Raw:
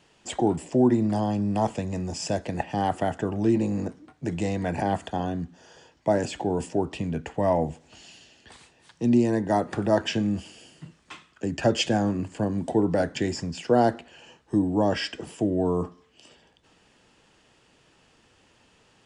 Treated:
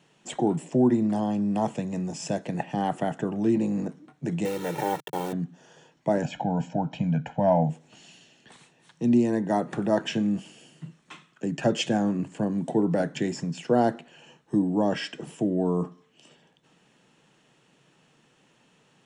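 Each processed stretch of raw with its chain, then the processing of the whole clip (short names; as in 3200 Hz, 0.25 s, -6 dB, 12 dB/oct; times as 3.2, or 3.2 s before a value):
4.45–5.33 level-crossing sampler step -33 dBFS + HPF 170 Hz + comb 2.2 ms, depth 94%
6.22–7.7 steep low-pass 7400 Hz 96 dB/oct + high shelf 5200 Hz -11.5 dB + comb 1.3 ms, depth 92%
whole clip: resonant low shelf 110 Hz -9.5 dB, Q 3; notch 4800 Hz, Q 7.9; gain -2.5 dB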